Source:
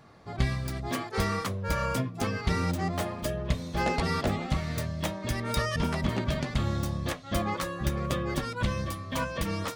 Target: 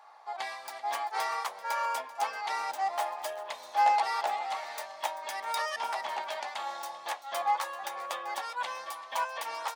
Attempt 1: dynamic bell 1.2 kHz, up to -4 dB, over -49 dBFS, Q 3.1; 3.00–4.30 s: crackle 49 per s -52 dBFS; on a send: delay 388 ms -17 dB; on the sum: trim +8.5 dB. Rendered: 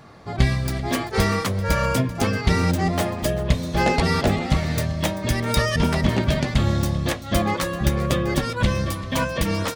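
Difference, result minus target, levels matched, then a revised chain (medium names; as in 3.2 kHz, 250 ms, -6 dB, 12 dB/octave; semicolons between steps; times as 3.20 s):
1 kHz band -9.5 dB
dynamic bell 1.2 kHz, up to -4 dB, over -49 dBFS, Q 3.1; ladder high-pass 770 Hz, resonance 70%; 3.00–4.30 s: crackle 49 per s -52 dBFS; on a send: delay 388 ms -17 dB; on the sum: trim +8.5 dB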